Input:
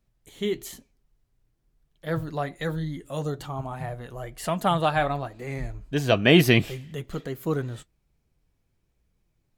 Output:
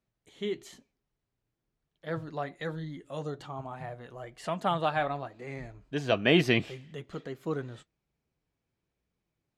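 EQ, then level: HPF 190 Hz 6 dB/oct; air absorption 73 m; -4.5 dB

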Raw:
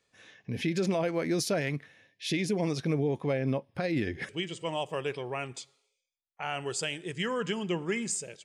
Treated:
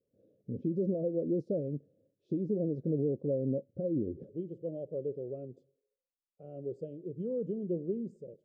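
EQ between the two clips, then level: elliptic low-pass 560 Hz, stop band 40 dB; air absorption 93 m; low shelf 130 Hz -8 dB; 0.0 dB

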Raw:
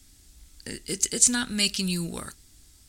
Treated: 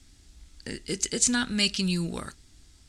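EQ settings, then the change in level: air absorption 66 m; +1.5 dB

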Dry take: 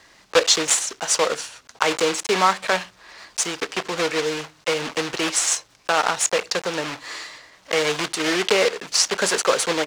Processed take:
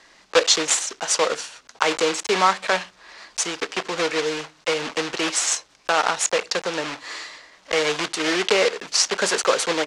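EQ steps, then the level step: LPF 8800 Hz 12 dB/oct; bell 91 Hz -14 dB 0.89 oct; 0.0 dB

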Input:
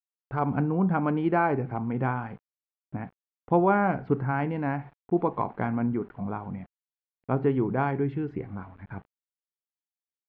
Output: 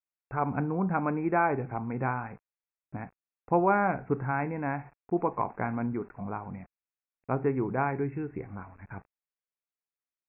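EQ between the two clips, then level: brick-wall FIR low-pass 2700 Hz; bell 190 Hz -5 dB 2.6 oct; 0.0 dB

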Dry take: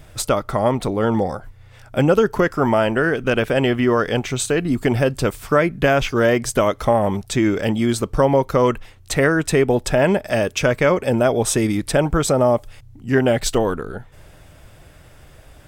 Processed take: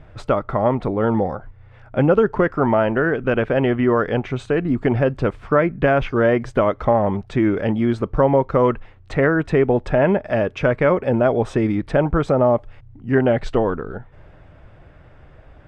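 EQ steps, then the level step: LPF 1900 Hz 12 dB/oct; 0.0 dB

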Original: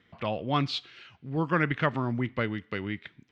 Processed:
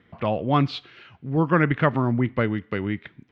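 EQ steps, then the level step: LPF 1400 Hz 6 dB/oct; +7.5 dB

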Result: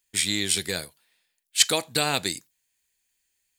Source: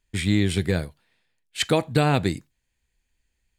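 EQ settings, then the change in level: RIAA curve recording; dynamic EQ 5300 Hz, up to +7 dB, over -39 dBFS, Q 1; -3.5 dB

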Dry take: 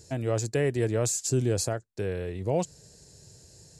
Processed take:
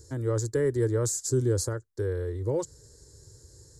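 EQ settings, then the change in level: low shelf 230 Hz +8 dB; fixed phaser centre 700 Hz, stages 6; 0.0 dB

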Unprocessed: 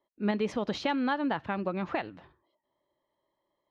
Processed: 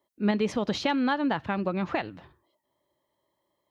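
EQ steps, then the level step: HPF 69 Hz; low shelf 120 Hz +9 dB; high shelf 4700 Hz +7.5 dB; +2.0 dB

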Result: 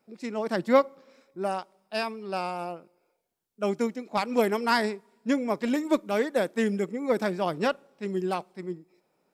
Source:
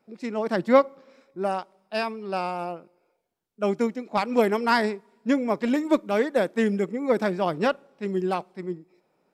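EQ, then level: high shelf 5200 Hz +7.5 dB; -3.0 dB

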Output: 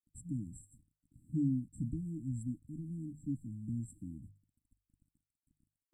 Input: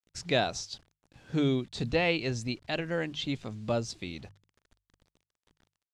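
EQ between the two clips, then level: brick-wall FIR band-stop 320–7400 Hz; -3.5 dB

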